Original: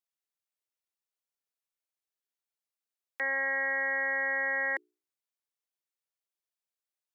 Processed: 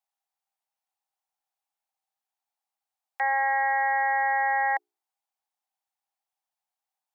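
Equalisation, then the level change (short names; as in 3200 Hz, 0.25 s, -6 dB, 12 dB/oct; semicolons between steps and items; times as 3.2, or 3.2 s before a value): resonant high-pass 790 Hz, resonance Q 8.6; 0.0 dB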